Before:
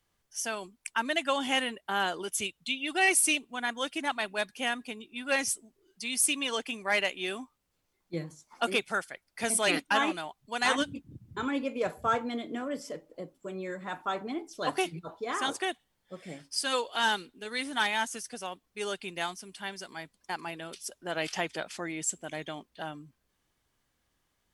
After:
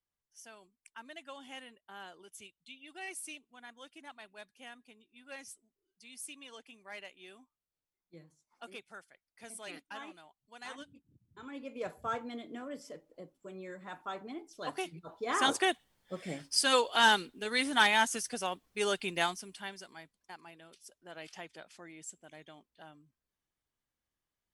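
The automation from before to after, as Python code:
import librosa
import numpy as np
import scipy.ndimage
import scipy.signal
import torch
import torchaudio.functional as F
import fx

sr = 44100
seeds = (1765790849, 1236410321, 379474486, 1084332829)

y = fx.gain(x, sr, db=fx.line((11.3, -19.0), (11.81, -8.0), (15.0, -8.0), (15.42, 3.0), (19.22, 3.0), (19.76, -6.0), (20.41, -14.5)))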